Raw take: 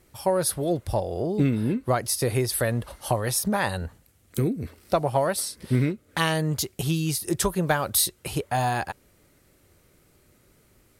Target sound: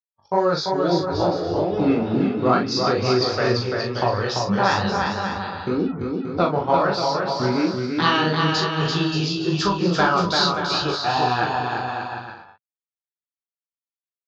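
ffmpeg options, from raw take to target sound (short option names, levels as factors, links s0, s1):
-filter_complex "[0:a]aresample=16000,acrusher=bits=5:mix=0:aa=0.5,aresample=44100,afftdn=nr=36:nf=-42,atempo=0.77,acontrast=52,agate=range=0.0224:threshold=0.0316:ratio=3:detection=peak,flanger=delay=15.5:depth=6.2:speed=2.2,highpass=110,equalizer=f=130:t=q:w=4:g=-10,equalizer=f=230:t=q:w=4:g=-5,equalizer=f=600:t=q:w=4:g=-5,equalizer=f=1300:t=q:w=4:g=7,equalizer=f=2000:t=q:w=4:g=-7,equalizer=f=4700:t=q:w=4:g=6,lowpass=f=4900:w=0.5412,lowpass=f=4900:w=1.3066,asplit=2[s0][s1];[s1]adelay=40,volume=0.562[s2];[s0][s2]amix=inputs=2:normalize=0,asplit=2[s3][s4];[s4]aecho=0:1:340|578|744.6|861.2|942.9:0.631|0.398|0.251|0.158|0.1[s5];[s3][s5]amix=inputs=2:normalize=0,volume=1.19"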